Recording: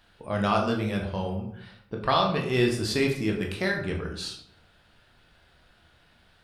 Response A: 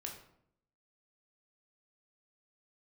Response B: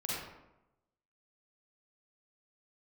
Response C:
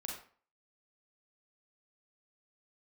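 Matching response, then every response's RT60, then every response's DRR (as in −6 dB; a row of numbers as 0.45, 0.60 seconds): A; 0.70, 0.90, 0.45 seconds; 0.5, −7.0, −1.5 decibels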